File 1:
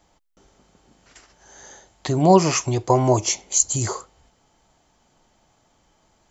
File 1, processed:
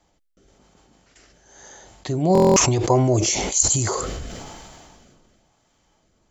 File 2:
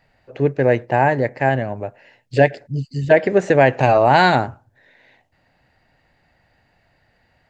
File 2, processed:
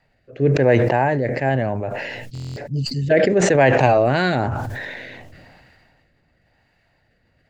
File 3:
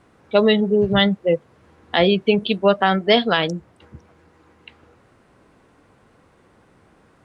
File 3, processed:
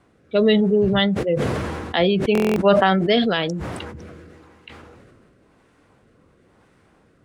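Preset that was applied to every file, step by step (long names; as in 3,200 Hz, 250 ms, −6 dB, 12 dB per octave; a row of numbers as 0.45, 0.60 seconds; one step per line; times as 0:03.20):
rotating-speaker cabinet horn 1 Hz
buffer that repeats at 0:02.33, samples 1,024, times 9
level that may fall only so fast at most 25 dB per second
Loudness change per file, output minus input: +0.5, −1.5, −1.0 LU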